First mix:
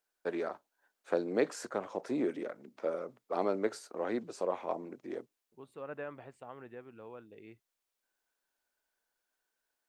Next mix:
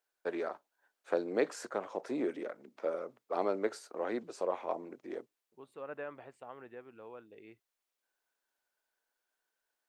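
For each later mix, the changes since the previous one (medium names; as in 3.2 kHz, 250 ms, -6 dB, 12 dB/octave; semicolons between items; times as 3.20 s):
master: add tone controls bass -7 dB, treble -2 dB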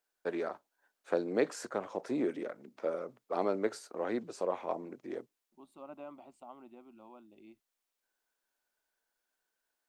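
second voice: add static phaser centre 460 Hz, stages 6; master: add tone controls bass +7 dB, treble +2 dB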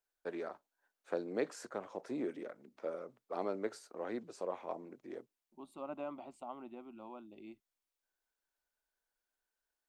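first voice -6.0 dB; second voice +4.5 dB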